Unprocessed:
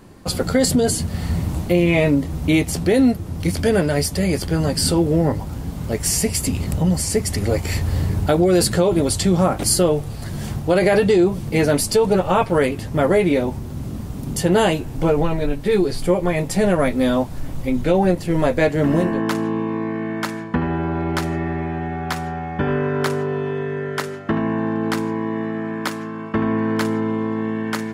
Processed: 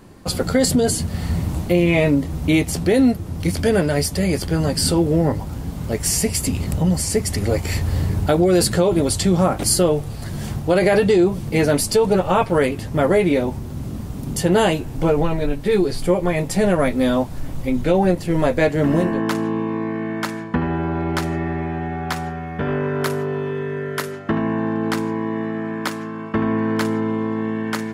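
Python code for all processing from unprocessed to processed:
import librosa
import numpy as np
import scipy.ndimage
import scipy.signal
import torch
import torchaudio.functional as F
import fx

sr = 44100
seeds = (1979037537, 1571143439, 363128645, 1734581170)

y = fx.chain(x, sr, fx.peak_eq(hz=12000.0, db=10.0, octaves=0.36),
    fx.notch(hz=810.0, q=6.0),
    fx.transformer_sat(knee_hz=490.0), at=(22.29, 24.12))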